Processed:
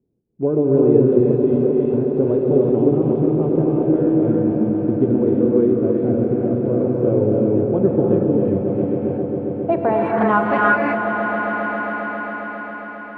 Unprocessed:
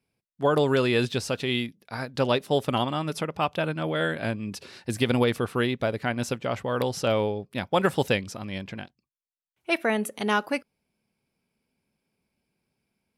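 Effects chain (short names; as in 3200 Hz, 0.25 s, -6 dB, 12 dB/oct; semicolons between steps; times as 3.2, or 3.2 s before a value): rattling part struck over -35 dBFS, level -27 dBFS; 5.14–5.72 Bessel high-pass 260 Hz, order 2; in parallel at +0.5 dB: compressor, threshold -31 dBFS, peak gain reduction 13.5 dB; on the sum: non-linear reverb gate 0.39 s rising, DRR -2 dB; low-pass sweep 360 Hz -> 2600 Hz, 8.53–11.63; on a send: swelling echo 0.135 s, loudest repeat 5, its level -12 dB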